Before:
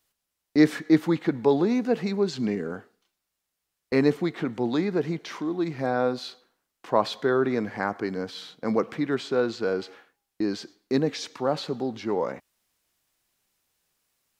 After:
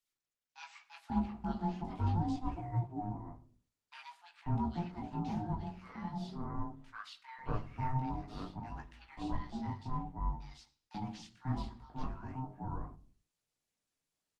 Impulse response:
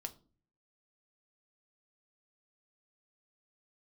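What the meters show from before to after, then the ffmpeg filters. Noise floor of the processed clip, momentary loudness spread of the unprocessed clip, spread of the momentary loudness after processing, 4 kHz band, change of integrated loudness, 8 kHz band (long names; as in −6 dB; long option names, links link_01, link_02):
below −85 dBFS, 10 LU, 16 LU, −18.0 dB, −13.5 dB, below −15 dB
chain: -filter_complex "[0:a]adynamicequalizer=threshold=0.00794:dfrequency=1300:dqfactor=2.5:tfrequency=1300:tqfactor=2.5:attack=5:release=100:ratio=0.375:range=1.5:mode=cutabove:tftype=bell,aeval=exprs='val(0)*sin(2*PI*520*n/s)':channel_layout=same,flanger=delay=17:depth=5.1:speed=0.46,acrossover=split=1300[link_01][link_02];[link_01]adelay=540[link_03];[link_03][link_02]amix=inputs=2:normalize=0[link_04];[1:a]atrim=start_sample=2205,afade=type=out:start_time=0.41:duration=0.01,atrim=end_sample=18522,asetrate=42777,aresample=44100[link_05];[link_04][link_05]afir=irnorm=-1:irlink=0,acrossover=split=250|2100[link_06][link_07][link_08];[link_06]acontrast=54[link_09];[link_09][link_07][link_08]amix=inputs=3:normalize=0,volume=-7dB" -ar 48000 -c:a libopus -b:a 20k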